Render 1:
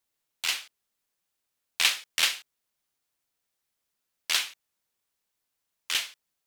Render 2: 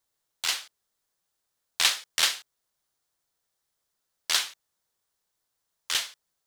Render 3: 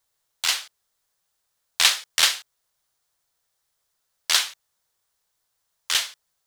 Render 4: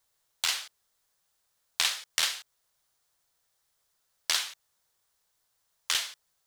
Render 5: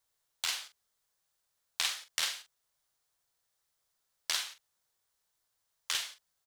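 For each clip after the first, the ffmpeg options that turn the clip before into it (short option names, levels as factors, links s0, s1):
-af "equalizer=f=250:t=o:w=0.67:g=-5,equalizer=f=2500:t=o:w=0.67:g=-7,equalizer=f=16000:t=o:w=0.67:g=-5,volume=1.5"
-af "equalizer=f=270:w=1.1:g=-6.5,volume=1.78"
-af "acompressor=threshold=0.0562:ratio=4"
-filter_complex "[0:a]asplit=2[s0][s1];[s1]adelay=43,volume=0.316[s2];[s0][s2]amix=inputs=2:normalize=0,volume=0.531"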